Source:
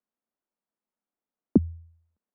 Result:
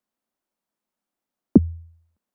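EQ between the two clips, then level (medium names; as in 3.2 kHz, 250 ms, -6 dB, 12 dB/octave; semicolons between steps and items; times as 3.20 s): band-stop 450 Hz, Q 12; +6.0 dB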